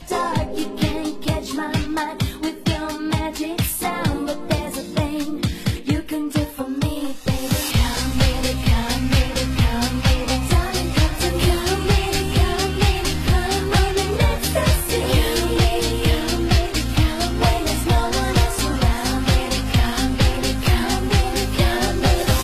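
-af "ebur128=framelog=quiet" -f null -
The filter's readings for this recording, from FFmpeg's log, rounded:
Integrated loudness:
  I:         -20.5 LUFS
  Threshold: -30.5 LUFS
Loudness range:
  LRA:         4.4 LU
  Threshold: -40.5 LUFS
  LRA low:   -23.6 LUFS
  LRA high:  -19.2 LUFS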